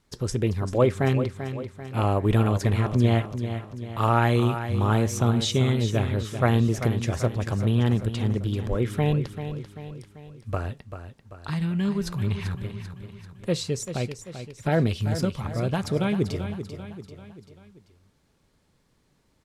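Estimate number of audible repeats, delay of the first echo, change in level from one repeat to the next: 4, 0.39 s, -6.0 dB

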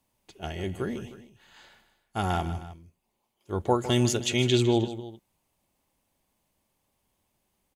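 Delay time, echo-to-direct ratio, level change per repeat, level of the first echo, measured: 0.155 s, -12.0 dB, -5.0 dB, -13.0 dB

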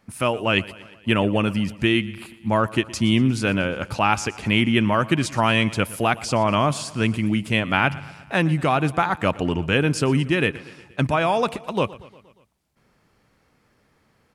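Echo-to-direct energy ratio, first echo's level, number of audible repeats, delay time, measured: -17.5 dB, -19.5 dB, 4, 0.118 s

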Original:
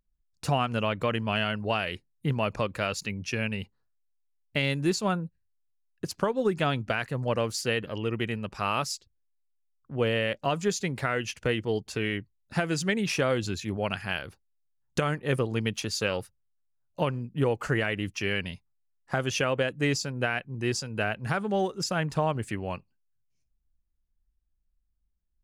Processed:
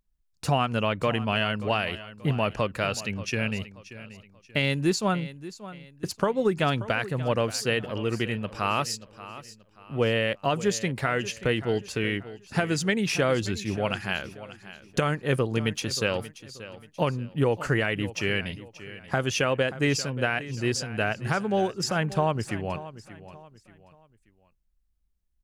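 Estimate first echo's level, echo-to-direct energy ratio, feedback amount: -15.5 dB, -15.0 dB, 35%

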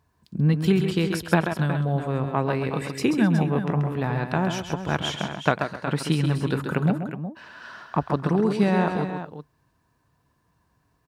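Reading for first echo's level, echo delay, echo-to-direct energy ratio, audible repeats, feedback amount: -6.5 dB, 0.134 s, -5.0 dB, 3, no steady repeat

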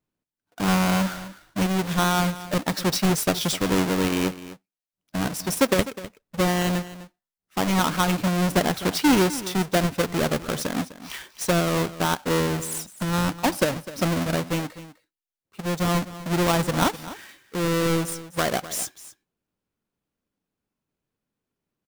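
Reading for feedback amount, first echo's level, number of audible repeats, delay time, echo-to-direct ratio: no steady repeat, -15.5 dB, 1, 0.253 s, -15.5 dB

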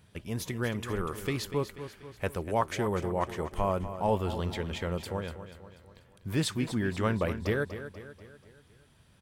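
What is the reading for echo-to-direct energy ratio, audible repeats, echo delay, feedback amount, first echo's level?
-10.5 dB, 4, 0.243 s, 50%, -11.5 dB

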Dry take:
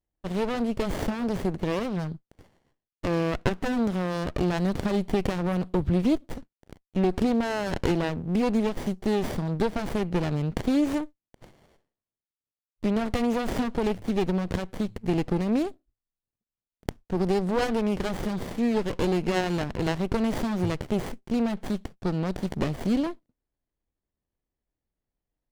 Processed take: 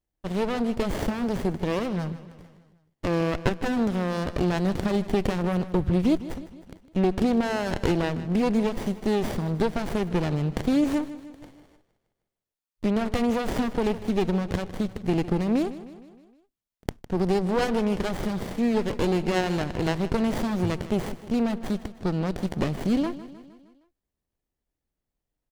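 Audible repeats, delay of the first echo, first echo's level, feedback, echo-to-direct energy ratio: 4, 0.155 s, -15.5 dB, 55%, -14.0 dB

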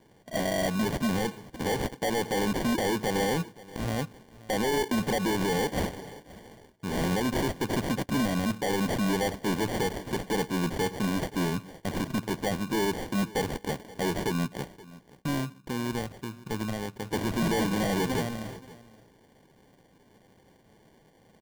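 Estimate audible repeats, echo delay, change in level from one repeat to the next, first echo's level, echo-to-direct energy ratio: 1, 0.526 s, no steady repeat, -20.0 dB, -20.0 dB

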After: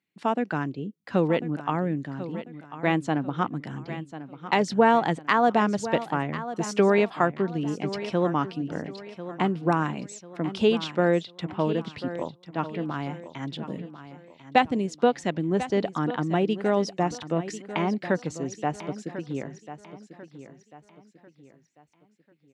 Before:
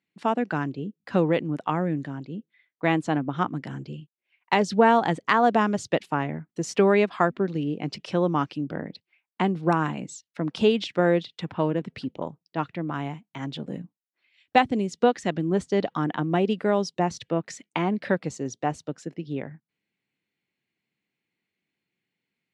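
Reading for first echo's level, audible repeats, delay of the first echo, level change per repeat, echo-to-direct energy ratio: -13.0 dB, 3, 1.044 s, -8.5 dB, -12.5 dB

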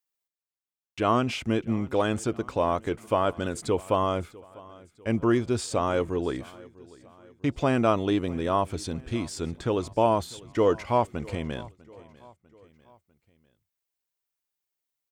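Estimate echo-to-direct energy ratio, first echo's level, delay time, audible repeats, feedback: -21.0 dB, -22.0 dB, 0.648 s, 3, 50%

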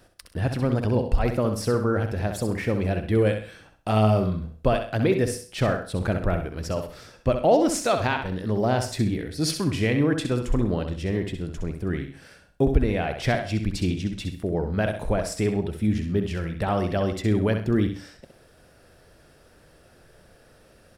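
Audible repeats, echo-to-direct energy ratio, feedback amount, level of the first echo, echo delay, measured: 3, -6.5 dB, no steady repeat, -7.5 dB, 65 ms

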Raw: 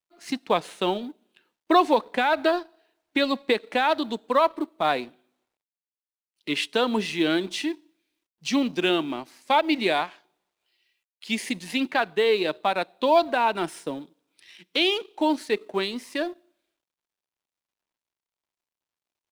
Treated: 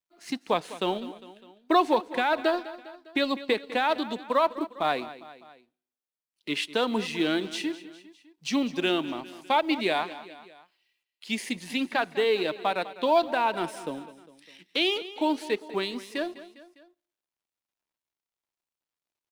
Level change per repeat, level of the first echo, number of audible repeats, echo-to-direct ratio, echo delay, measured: -5.0 dB, -16.0 dB, 3, -14.5 dB, 0.202 s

